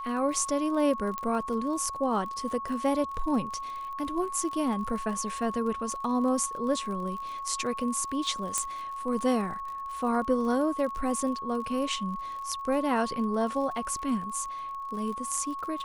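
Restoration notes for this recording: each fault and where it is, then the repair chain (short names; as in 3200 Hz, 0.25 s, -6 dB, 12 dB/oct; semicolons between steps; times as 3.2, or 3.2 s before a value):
crackle 49/s -37 dBFS
tone 1100 Hz -34 dBFS
1.18 pop -18 dBFS
8.58 pop -12 dBFS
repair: de-click; notch 1100 Hz, Q 30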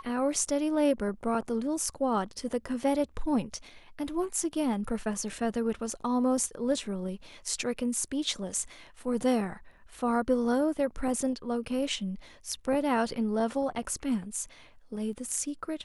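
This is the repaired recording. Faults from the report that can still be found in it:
8.58 pop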